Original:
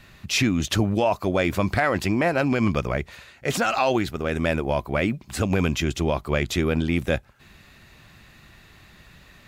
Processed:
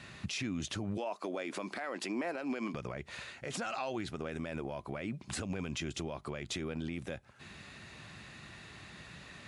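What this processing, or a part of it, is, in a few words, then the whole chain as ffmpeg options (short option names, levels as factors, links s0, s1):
podcast mastering chain: -filter_complex "[0:a]asettb=1/sr,asplit=3[s0][s1][s2];[s0]atrim=end=0.974[s3];[s1]atrim=start=0.97:end=2.74,asetpts=PTS-STARTPTS,afade=t=in:d=0.004:c=qsin,afade=t=out:st=1.766:d=0.004:c=qsin,highpass=f=240:w=0.5412,highpass=f=240:w=1.3066[s4];[s2]atrim=start=2.736[s5];[s3][s4]acrossfade=d=0.004:c1=hsin:c2=qsin[s6];[s6][s5]acrossfade=d=0.004:c1=qsin:c2=hsin,highpass=93,acompressor=threshold=0.0282:ratio=4,alimiter=level_in=1.68:limit=0.0631:level=0:latency=1:release=100,volume=0.596,volume=1.12" -ar 24000 -c:a libmp3lame -b:a 96k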